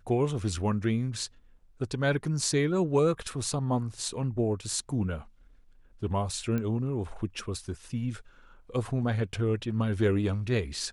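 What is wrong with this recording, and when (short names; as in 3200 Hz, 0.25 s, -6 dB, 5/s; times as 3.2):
6.58 pop -20 dBFS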